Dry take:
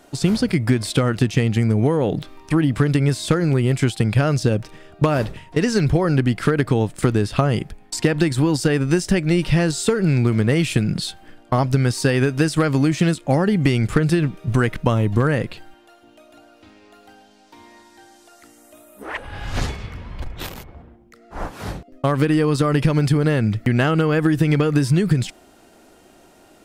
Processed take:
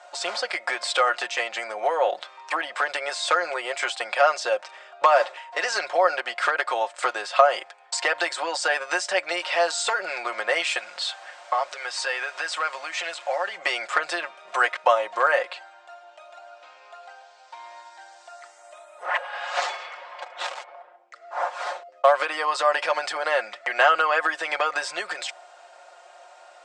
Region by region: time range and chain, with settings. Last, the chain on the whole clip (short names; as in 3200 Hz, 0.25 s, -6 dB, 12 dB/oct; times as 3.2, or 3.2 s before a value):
10.77–13.56 bell 2500 Hz +5.5 dB 1.9 oct + compressor 2.5:1, threshold -26 dBFS + added noise pink -48 dBFS
whole clip: Chebyshev band-pass 600–8200 Hz, order 4; high shelf 2600 Hz -9.5 dB; comb 5.6 ms, depth 62%; gain +6.5 dB